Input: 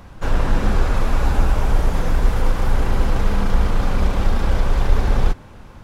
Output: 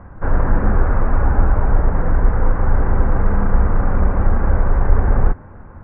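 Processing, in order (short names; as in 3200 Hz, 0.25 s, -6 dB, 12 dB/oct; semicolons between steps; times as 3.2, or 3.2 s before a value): steep low-pass 1800 Hz 36 dB/oct; bell 82 Hz +5.5 dB 0.3 oct; gain +2 dB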